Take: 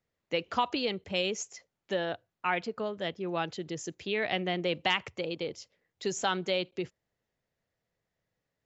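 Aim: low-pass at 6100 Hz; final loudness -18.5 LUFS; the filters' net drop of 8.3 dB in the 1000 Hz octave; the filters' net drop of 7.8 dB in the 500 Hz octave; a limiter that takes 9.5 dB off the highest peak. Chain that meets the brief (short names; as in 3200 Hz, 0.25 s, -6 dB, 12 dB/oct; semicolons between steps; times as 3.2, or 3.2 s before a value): LPF 6100 Hz; bell 500 Hz -8 dB; bell 1000 Hz -8 dB; gain +21 dB; limiter -5 dBFS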